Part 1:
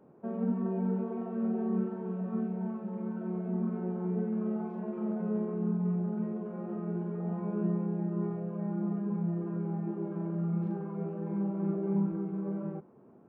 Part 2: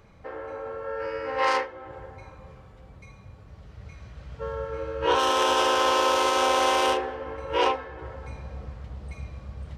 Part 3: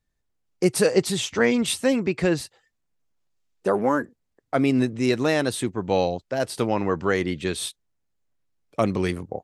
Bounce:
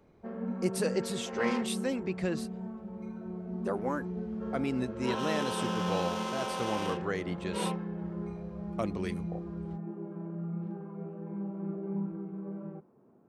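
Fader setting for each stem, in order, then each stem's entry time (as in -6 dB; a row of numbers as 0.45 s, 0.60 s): -5.0 dB, -13.5 dB, -11.5 dB; 0.00 s, 0.00 s, 0.00 s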